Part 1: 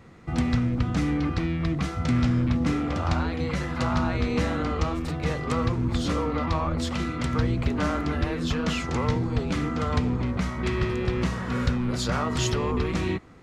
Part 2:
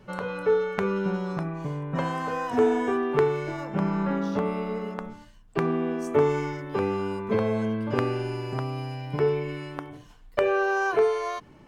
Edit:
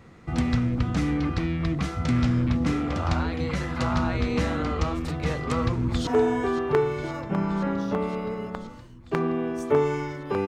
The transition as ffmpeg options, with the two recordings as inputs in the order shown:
ffmpeg -i cue0.wav -i cue1.wav -filter_complex "[0:a]apad=whole_dur=10.47,atrim=end=10.47,atrim=end=6.072[link_01];[1:a]atrim=start=2.508:end=6.91[link_02];[link_01][link_02]acrossfade=duration=0.004:curve1=hsin:curve2=hsin,asplit=2[link_03][link_04];[link_04]afade=type=in:start_time=5.52:duration=0.01,afade=type=out:start_time=6.07:duration=0.01,aecho=0:1:520|1040|1560|2080|2600|3120|3640|4160|4680|5200|5720|6240:0.223872|0.179098|0.143278|0.114623|0.091698|0.0733584|0.0586867|0.0469494|0.0375595|0.0300476|0.0240381|0.0192305[link_05];[link_03][link_05]amix=inputs=2:normalize=0" out.wav

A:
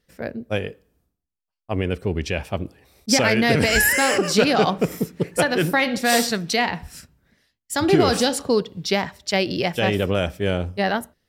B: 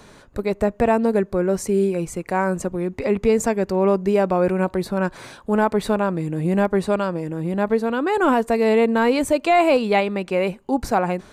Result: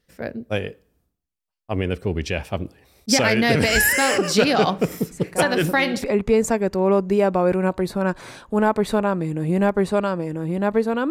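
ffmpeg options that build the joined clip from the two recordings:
ffmpeg -i cue0.wav -i cue1.wav -filter_complex "[1:a]asplit=2[link_01][link_02];[0:a]apad=whole_dur=11.1,atrim=end=11.1,atrim=end=6.042[link_03];[link_02]atrim=start=2.998:end=8.06[link_04];[link_01]atrim=start=2.07:end=3,asetpts=PTS-STARTPTS,volume=-8dB,afade=type=in:duration=0.004:curve=hsin,afade=type=out:start_time=0.926:duration=0.004:curve=hsin,adelay=5110[link_05];[link_03][link_04]acrossfade=duration=0.004:curve1=hsin:curve2=hsin[link_06];[link_06][link_05]amix=inputs=2:normalize=0" out.wav

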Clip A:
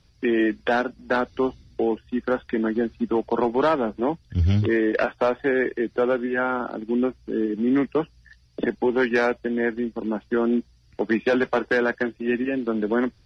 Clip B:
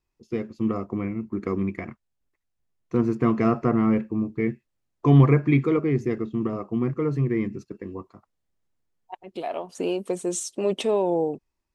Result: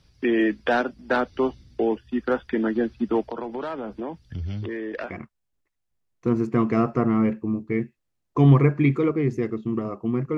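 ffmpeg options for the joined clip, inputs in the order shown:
ffmpeg -i cue0.wav -i cue1.wav -filter_complex "[0:a]asettb=1/sr,asplit=3[link_01][link_02][link_03];[link_01]atrim=end=3.224[link_04];[link_02]atrim=start=3.22:end=5.14,asetpts=PTS-STARTPTS,afade=type=in:duration=0.004:curve=qsin,afade=type=out:start_time=1.916:duration=0.004:curve=qsin,acompressor=threshold=-28dB:ratio=6:attack=3.2:release=140:knee=1:detection=peak[link_05];[link_03]atrim=start=5.136[link_06];[link_04][link_05]acrossfade=duration=0.004:curve1=hsin:curve2=qsin[link_07];[link_07][link_06]acrossfade=duration=0.004:curve1=qsin:curve2=hsin,apad=whole_dur=10.37,atrim=end=10.37,atrim=end=5.14,asetpts=PTS-STARTPTS[link_08];[1:a]atrim=start=1.74:end=7.05,asetpts=PTS-STARTPTS[link_09];[link_08][link_09]acrossfade=duration=0.08:curve1=tri:curve2=tri" out.wav

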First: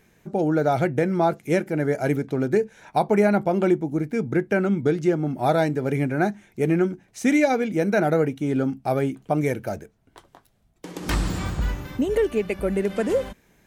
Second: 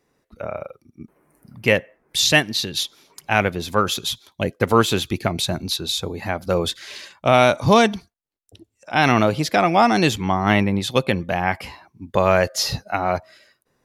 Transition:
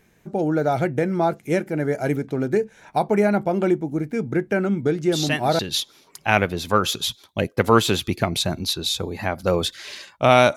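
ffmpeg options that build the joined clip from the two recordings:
ffmpeg -i cue0.wav -i cue1.wav -filter_complex "[1:a]asplit=2[link_01][link_02];[0:a]apad=whole_dur=10.56,atrim=end=10.56,atrim=end=5.592[link_03];[link_02]atrim=start=2.618:end=7.59[link_04];[link_01]atrim=start=1.99:end=2.62,asetpts=PTS-STARTPTS,volume=-9dB,afade=type=in:duration=0.004:curve=hsin,afade=type=out:start_time=0.626:duration=0.004:curve=hsin,adelay=4960[link_05];[link_03][link_04]acrossfade=duration=0.004:curve1=hsin:curve2=hsin[link_06];[link_06][link_05]amix=inputs=2:normalize=0" out.wav

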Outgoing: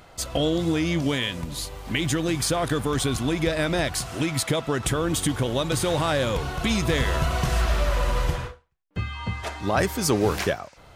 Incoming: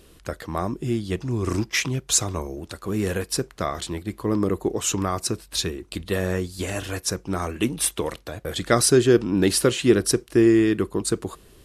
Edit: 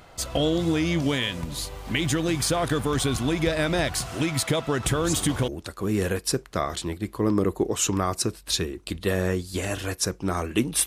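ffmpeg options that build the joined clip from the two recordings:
ffmpeg -i cue0.wav -i cue1.wav -filter_complex "[1:a]asplit=2[link_01][link_02];[0:a]apad=whole_dur=10.86,atrim=end=10.86,atrim=end=5.482[link_03];[link_02]atrim=start=2.528:end=7.91[link_04];[link_01]atrim=start=1.96:end=2.53,asetpts=PTS-STARTPTS,volume=-12dB,afade=type=in:duration=0.004:curve=hsin,afade=type=out:start_time=0.566:duration=0.004:curve=hsin,adelay=4910[link_05];[link_03][link_04]acrossfade=duration=0.004:curve1=hsin:curve2=hsin[link_06];[link_06][link_05]amix=inputs=2:normalize=0" out.wav

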